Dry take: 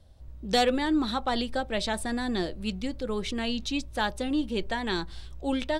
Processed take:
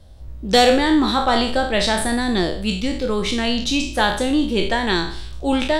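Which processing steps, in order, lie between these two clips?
peak hold with a decay on every bin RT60 0.53 s
level +8.5 dB

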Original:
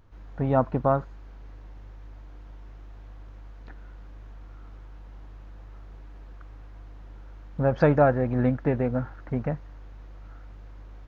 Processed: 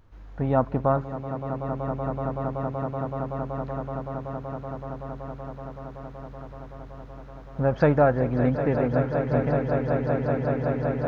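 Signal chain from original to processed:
echo that builds up and dies away 189 ms, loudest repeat 8, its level −11 dB

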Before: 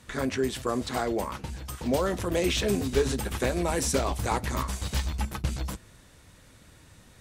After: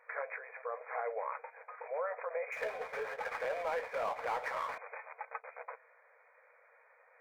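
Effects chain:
brickwall limiter −22.5 dBFS, peak gain reduction 10 dB
linear-phase brick-wall band-pass 440–2,500 Hz
0:02.52–0:04.78: power curve on the samples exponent 0.7
level −2.5 dB

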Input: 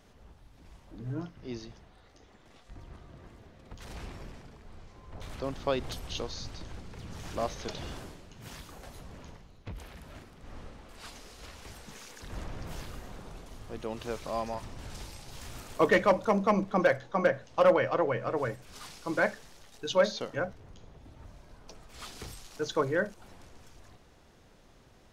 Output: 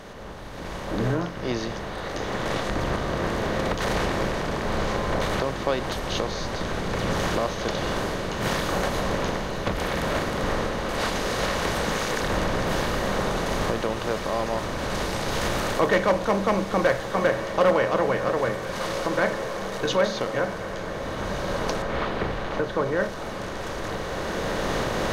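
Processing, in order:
compressor on every frequency bin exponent 0.6
camcorder AGC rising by 9.9 dB per second
0:21.82–0:23.00: high-frequency loss of the air 370 metres
feedback delay with all-pass diffusion 1,518 ms, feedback 62%, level −10 dB

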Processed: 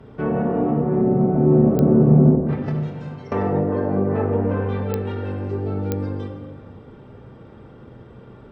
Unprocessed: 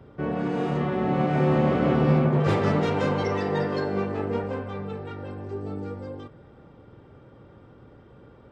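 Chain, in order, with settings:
0:02.35–0:03.32: noise gate −18 dBFS, range −21 dB
treble cut that deepens with the level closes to 500 Hz, closed at −21 dBFS
convolution reverb RT60 1.4 s, pre-delay 5 ms, DRR 1 dB
digital clicks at 0:01.79/0:04.94/0:05.92, −14 dBFS
level +4 dB

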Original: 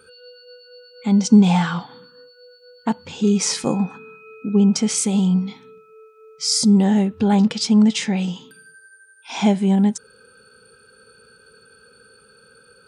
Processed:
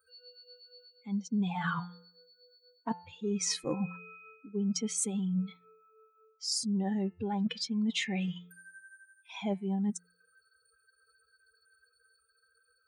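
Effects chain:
spectral dynamics exaggerated over time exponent 2
reversed playback
downward compressor 8 to 1, threshold −33 dBFS, peak gain reduction 23.5 dB
reversed playback
hum removal 176.1 Hz, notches 16
level +3.5 dB

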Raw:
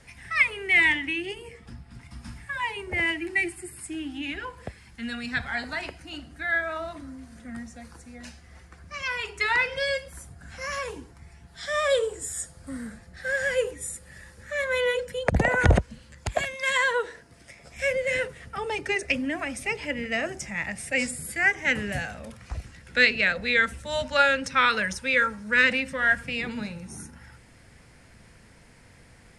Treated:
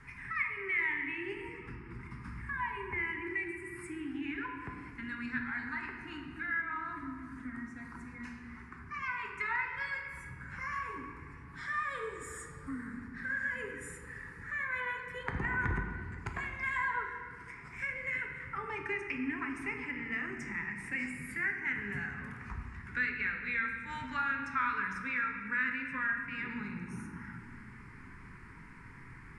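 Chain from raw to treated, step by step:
drawn EQ curve 400 Hz 0 dB, 600 Hz −25 dB, 980 Hz +7 dB, 2,200 Hz +3 dB, 3,300 Hz −13 dB
downward compressor 2 to 1, threshold −43 dBFS, peak gain reduction 17 dB
on a send: convolution reverb RT60 2.3 s, pre-delay 7 ms, DRR 2 dB
on the sum: level −1.5 dB

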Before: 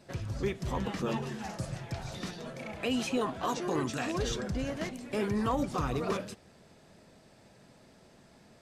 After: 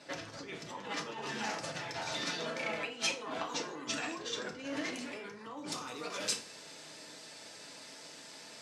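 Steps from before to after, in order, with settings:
high-shelf EQ 4,000 Hz −7.5 dB, from 0:05.72 +6.5 dB
compressor whose output falls as the input rises −39 dBFS, ratio −1
band-pass filter 150–6,100 Hz
spectral tilt +3.5 dB per octave
notch filter 720 Hz, Q 17
feedback delay network reverb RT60 0.48 s, low-frequency decay 1×, high-frequency decay 0.7×, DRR 1.5 dB

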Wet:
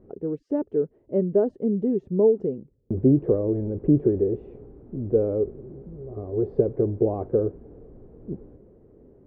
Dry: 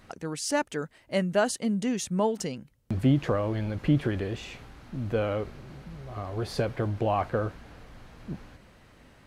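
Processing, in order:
low-pass with resonance 410 Hz, resonance Q 4.9

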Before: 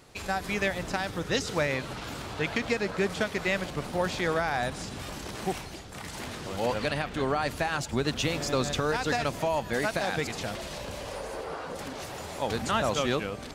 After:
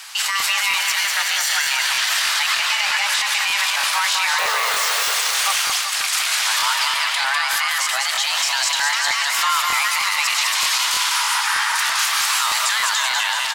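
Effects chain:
0:00.80–0:01.71: lower of the sound and its delayed copy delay 0.73 ms
Bessel high-pass filter 530 Hz, order 2
tilt shelving filter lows −8.5 dB, about 760 Hz
in parallel at 0 dB: compressor whose output falls as the input rises −34 dBFS
on the sum: brickwall limiter −18.5 dBFS, peak gain reduction 10 dB
0:04.38–0:05.15: comparator with hysteresis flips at −37.5 dBFS
frequency shifter +410 Hz
on a send: bouncing-ball delay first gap 200 ms, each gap 0.9×, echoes 5
on the sum: regular buffer underruns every 0.31 s, samples 1,024, repeat, from 0:00.38
level +7.5 dB

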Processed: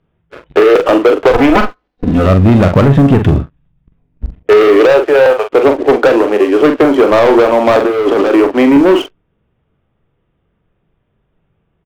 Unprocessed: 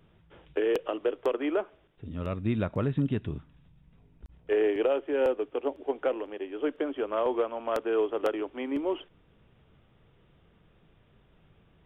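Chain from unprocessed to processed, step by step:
0:01.31–0:02.26: lower of the sound and its delayed copy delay 4 ms
0:04.68–0:05.49: high-pass filter 250 Hz → 720 Hz 24 dB per octave
noise reduction from a noise print of the clip's start 13 dB
Bessel low-pass filter 2,200 Hz, order 2
leveller curve on the samples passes 3
0:07.80–0:08.32: compressor whose output falls as the input rises −28 dBFS, ratio −1
double-tracking delay 43 ms −7.5 dB
boost into a limiter +18 dB
level −1 dB

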